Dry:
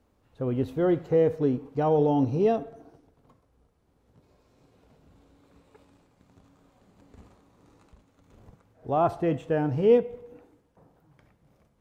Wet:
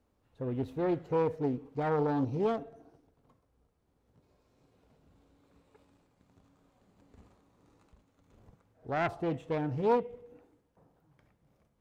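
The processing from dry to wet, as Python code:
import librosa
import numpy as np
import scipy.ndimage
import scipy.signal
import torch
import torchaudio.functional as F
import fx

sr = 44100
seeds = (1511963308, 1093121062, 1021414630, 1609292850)

y = fx.self_delay(x, sr, depth_ms=0.39)
y = y * librosa.db_to_amplitude(-6.5)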